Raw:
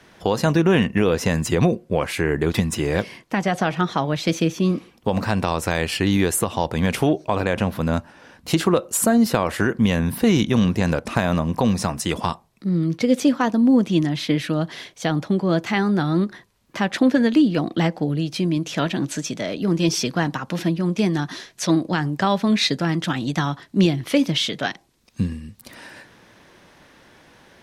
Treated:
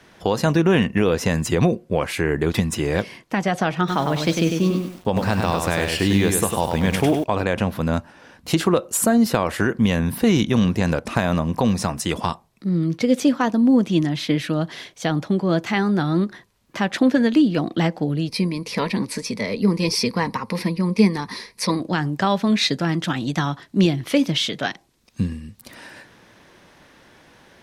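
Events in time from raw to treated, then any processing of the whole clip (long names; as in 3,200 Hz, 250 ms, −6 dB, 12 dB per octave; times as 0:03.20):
0:03.78–0:07.24: feedback echo at a low word length 100 ms, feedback 35%, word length 7 bits, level −4.5 dB
0:18.28–0:21.80: EQ curve with evenly spaced ripples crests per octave 0.9, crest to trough 13 dB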